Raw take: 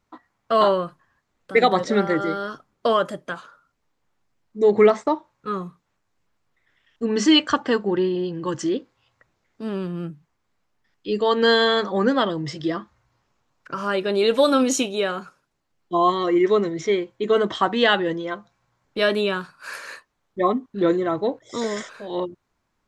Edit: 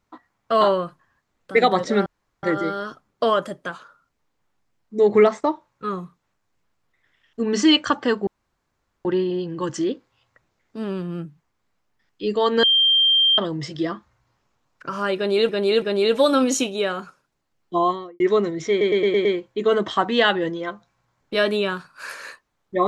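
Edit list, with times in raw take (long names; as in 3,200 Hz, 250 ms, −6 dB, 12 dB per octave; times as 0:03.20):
0:02.06: splice in room tone 0.37 s
0:07.90: splice in room tone 0.78 s
0:11.48–0:12.23: beep over 3,170 Hz −13.5 dBFS
0:14.01–0:14.34: repeat, 3 plays
0:15.94–0:16.39: fade out and dull
0:16.89: stutter 0.11 s, 6 plays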